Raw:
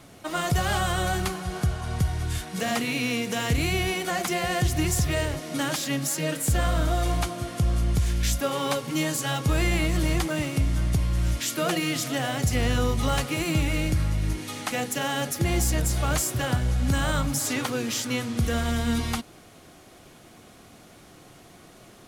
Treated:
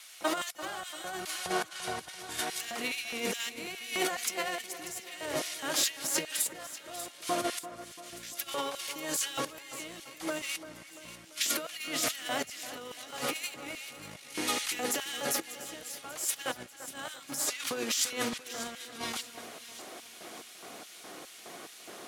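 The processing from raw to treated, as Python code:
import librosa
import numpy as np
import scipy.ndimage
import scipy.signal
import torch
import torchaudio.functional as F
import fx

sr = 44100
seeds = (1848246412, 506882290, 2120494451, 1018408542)

p1 = scipy.signal.sosfilt(scipy.signal.butter(4, 54.0, 'highpass', fs=sr, output='sos'), x)
p2 = fx.over_compress(p1, sr, threshold_db=-31.0, ratio=-0.5)
p3 = fx.filter_lfo_highpass(p2, sr, shape='square', hz=2.4, low_hz=370.0, high_hz=2400.0, q=0.77)
p4 = p3 + fx.echo_split(p3, sr, split_hz=2100.0, low_ms=341, high_ms=591, feedback_pct=52, wet_db=-13.0, dry=0)
y = fx.vibrato(p4, sr, rate_hz=8.1, depth_cents=18.0)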